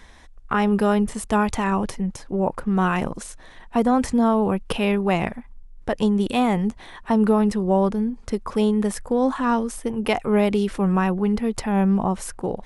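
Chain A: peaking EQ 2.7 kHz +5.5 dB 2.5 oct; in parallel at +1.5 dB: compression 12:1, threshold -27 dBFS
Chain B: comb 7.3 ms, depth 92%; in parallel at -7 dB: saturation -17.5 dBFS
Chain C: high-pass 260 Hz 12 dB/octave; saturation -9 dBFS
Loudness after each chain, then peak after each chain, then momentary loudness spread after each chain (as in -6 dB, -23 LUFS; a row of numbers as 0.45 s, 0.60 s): -18.5 LUFS, -19.0 LUFS, -25.0 LUFS; -2.5 dBFS, -4.5 dBFS, -10.5 dBFS; 8 LU, 9 LU, 9 LU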